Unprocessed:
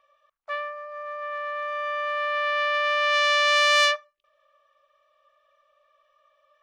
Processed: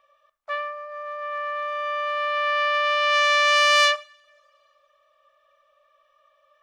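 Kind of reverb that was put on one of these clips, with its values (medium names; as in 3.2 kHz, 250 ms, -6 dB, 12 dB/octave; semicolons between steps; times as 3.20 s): two-slope reverb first 0.46 s, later 2.4 s, from -26 dB, DRR 14.5 dB; trim +2 dB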